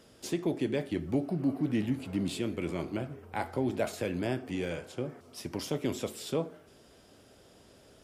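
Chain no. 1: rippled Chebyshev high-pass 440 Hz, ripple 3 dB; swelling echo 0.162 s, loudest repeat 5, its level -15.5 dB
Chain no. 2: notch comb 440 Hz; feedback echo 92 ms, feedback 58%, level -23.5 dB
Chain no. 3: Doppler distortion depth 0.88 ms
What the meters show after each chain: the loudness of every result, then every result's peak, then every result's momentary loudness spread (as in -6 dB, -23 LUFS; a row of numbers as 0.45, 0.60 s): -41.0, -34.5, -34.5 LUFS; -20.5, -18.0, -18.0 dBFS; 10, 9, 7 LU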